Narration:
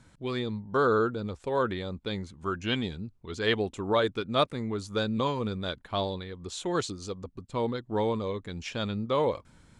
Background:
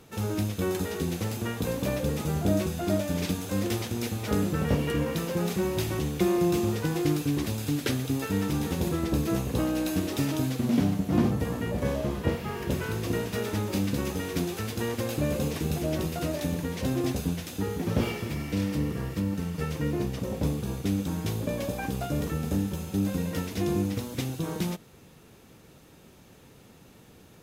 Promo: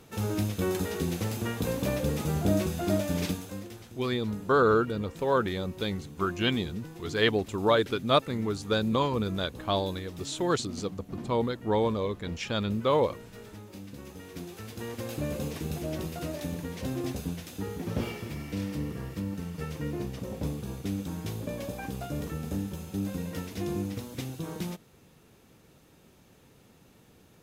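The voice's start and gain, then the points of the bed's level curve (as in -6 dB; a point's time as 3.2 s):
3.75 s, +2.0 dB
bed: 3.26 s -0.5 dB
3.74 s -16.5 dB
13.84 s -16.5 dB
15.15 s -5 dB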